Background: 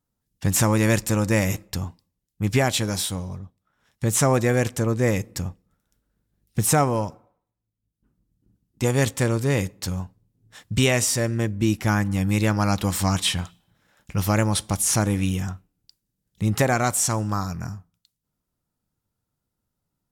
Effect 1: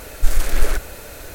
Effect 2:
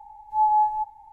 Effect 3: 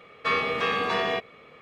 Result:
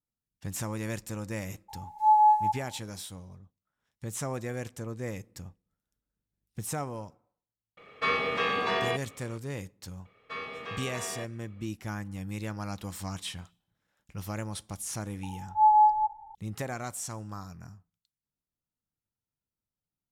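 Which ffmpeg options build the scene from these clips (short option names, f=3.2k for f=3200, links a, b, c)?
-filter_complex "[2:a]asplit=2[a][b];[3:a]asplit=2[c][d];[0:a]volume=-15dB[e];[a]bass=f=250:g=-13,treble=f=4k:g=9[f];[b]lowpass=f=1.2k:t=q:w=1.7[g];[f]atrim=end=1.12,asetpts=PTS-STARTPTS,afade=t=in:d=0.02,afade=t=out:st=1.1:d=0.02,adelay=1680[h];[c]atrim=end=1.61,asetpts=PTS-STARTPTS,volume=-2.5dB,afade=t=in:d=0.004:c=hsin,afade=t=out:st=1.606:d=0.004:c=hsin,adelay=7770[i];[d]atrim=end=1.61,asetpts=PTS-STARTPTS,volume=-13.5dB,afade=t=in:d=0.004:c=hsin,afade=t=out:st=1.606:d=0.004:c=hsin,adelay=10050[j];[g]atrim=end=1.12,asetpts=PTS-STARTPTS,volume=-3.5dB,afade=t=in:d=0.004:c=hsin,afade=t=out:st=1.116:d=0.004:c=hsin,adelay=15230[k];[e][h][i][j][k]amix=inputs=5:normalize=0"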